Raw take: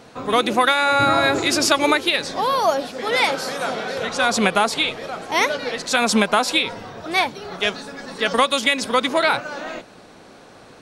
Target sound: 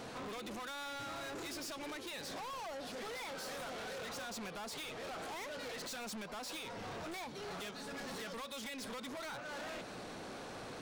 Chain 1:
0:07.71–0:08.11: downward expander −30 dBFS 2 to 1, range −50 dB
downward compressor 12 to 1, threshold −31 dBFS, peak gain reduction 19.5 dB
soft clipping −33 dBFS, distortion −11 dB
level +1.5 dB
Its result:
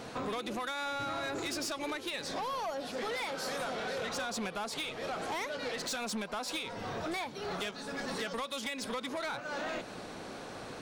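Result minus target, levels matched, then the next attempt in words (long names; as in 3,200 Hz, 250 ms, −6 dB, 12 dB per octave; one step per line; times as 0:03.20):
soft clipping: distortion −7 dB
0:07.71–0:08.11: downward expander −30 dBFS 2 to 1, range −50 dB
downward compressor 12 to 1, threshold −31 dBFS, peak gain reduction 19.5 dB
soft clipping −44 dBFS, distortion −4 dB
level +1.5 dB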